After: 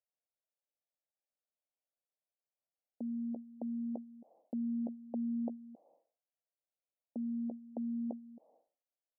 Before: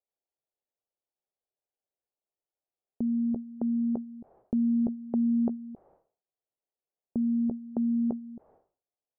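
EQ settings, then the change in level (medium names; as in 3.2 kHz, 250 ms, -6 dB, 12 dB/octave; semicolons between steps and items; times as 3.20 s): ladder band-pass 500 Hz, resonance 30%; static phaser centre 390 Hz, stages 6; +7.5 dB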